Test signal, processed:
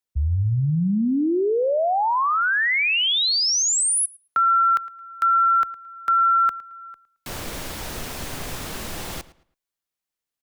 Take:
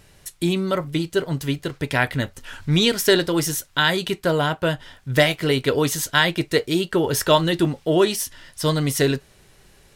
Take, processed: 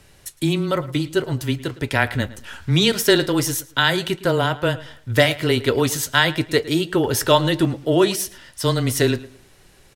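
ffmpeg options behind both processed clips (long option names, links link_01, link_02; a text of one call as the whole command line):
ffmpeg -i in.wav -filter_complex "[0:a]afreqshift=-14,asplit=2[link_01][link_02];[link_02]adelay=110,lowpass=frequency=4300:poles=1,volume=-17.5dB,asplit=2[link_03][link_04];[link_04]adelay=110,lowpass=frequency=4300:poles=1,volume=0.28,asplit=2[link_05][link_06];[link_06]adelay=110,lowpass=frequency=4300:poles=1,volume=0.28[link_07];[link_03][link_05][link_07]amix=inputs=3:normalize=0[link_08];[link_01][link_08]amix=inputs=2:normalize=0,volume=1dB" out.wav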